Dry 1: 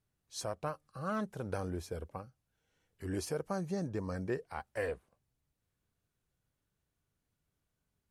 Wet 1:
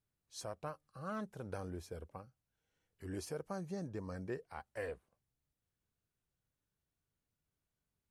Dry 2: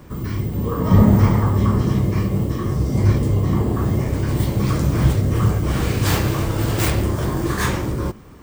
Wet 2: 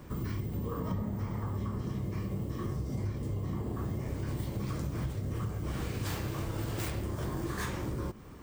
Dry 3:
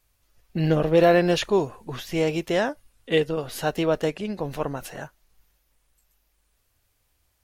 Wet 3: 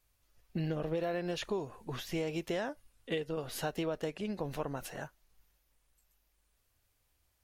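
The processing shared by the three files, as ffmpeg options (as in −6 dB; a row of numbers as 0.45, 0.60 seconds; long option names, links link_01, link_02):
-af "acompressor=threshold=-25dB:ratio=12,volume=-6dB"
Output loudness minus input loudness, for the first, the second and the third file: −6.0, −16.5, −13.5 LU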